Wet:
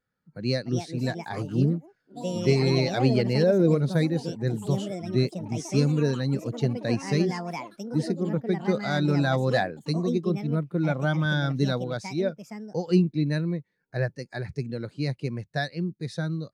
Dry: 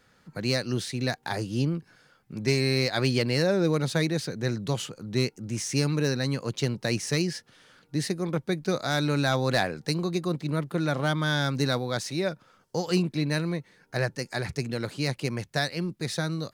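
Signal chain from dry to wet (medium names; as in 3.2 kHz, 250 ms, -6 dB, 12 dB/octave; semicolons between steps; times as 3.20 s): ever faster or slower copies 390 ms, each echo +5 st, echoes 3, each echo -6 dB; modulation noise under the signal 33 dB; spectral contrast expander 1.5:1; trim +1.5 dB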